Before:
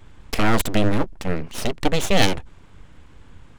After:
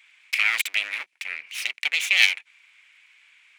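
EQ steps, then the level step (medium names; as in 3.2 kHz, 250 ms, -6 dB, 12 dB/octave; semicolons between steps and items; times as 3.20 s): resonant high-pass 2.3 kHz, resonance Q 6.2; -3.0 dB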